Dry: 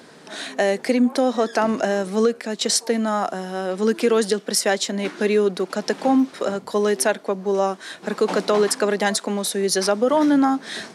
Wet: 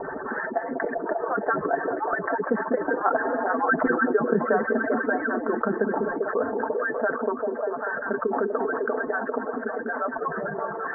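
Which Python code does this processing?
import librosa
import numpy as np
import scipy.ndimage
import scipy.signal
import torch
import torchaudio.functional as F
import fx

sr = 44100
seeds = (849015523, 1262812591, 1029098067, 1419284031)

p1 = fx.hpss_only(x, sr, part='percussive')
p2 = fx.doppler_pass(p1, sr, speed_mps=19, closest_m=7.2, pass_at_s=3.56)
p3 = scipy.signal.sosfilt(scipy.signal.butter(16, 1700.0, 'lowpass', fs=sr, output='sos'), p2)
p4 = p3 + 0.62 * np.pad(p3, (int(4.5 * sr / 1000.0), 0))[:len(p3)]
p5 = p4 + fx.echo_stepped(p4, sr, ms=197, hz=280.0, octaves=0.7, feedback_pct=70, wet_db=-6.0, dry=0)
p6 = fx.env_flatten(p5, sr, amount_pct=70)
y = F.gain(torch.from_numpy(p6), 3.5).numpy()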